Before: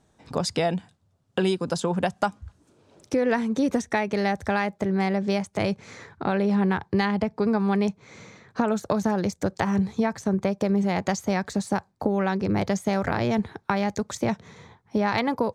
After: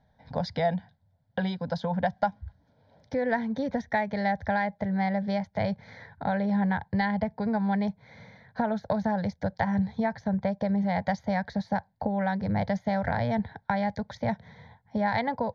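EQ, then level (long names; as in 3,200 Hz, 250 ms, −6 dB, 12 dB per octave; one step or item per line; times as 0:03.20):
high-frequency loss of the air 230 metres
phaser with its sweep stopped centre 1,800 Hz, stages 8
+1.0 dB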